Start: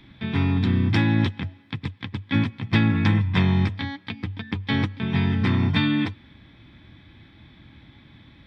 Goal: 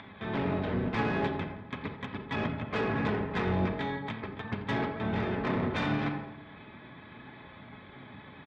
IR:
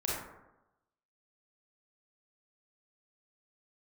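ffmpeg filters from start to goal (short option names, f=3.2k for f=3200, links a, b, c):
-filter_complex "[0:a]aresample=11025,asoftclip=type=hard:threshold=-21.5dB,aresample=44100,aecho=1:1:4.7:0.58,acompressor=mode=upward:threshold=-36dB:ratio=2.5,highpass=330,lowpass=2.3k,aecho=1:1:85|170|255|340|425:0.178|0.0942|0.05|0.0265|0.014,asplit=2[a][b];[1:a]atrim=start_sample=2205,lowshelf=f=210:g=6[c];[b][c]afir=irnorm=-1:irlink=0,volume=-8.5dB[d];[a][d]amix=inputs=2:normalize=0,asoftclip=type=tanh:threshold=-20dB,flanger=delay=1.4:depth=9.1:regen=-51:speed=0.39:shape=sinusoidal,asplit=3[e][f][g];[f]asetrate=22050,aresample=44100,atempo=2,volume=-3dB[h];[g]asetrate=29433,aresample=44100,atempo=1.49831,volume=-9dB[i];[e][h][i]amix=inputs=3:normalize=0"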